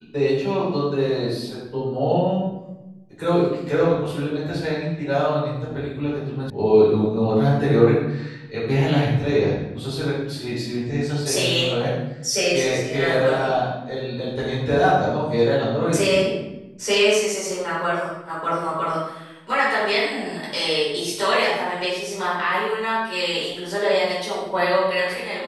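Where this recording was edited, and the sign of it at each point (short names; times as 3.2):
6.5 sound cut off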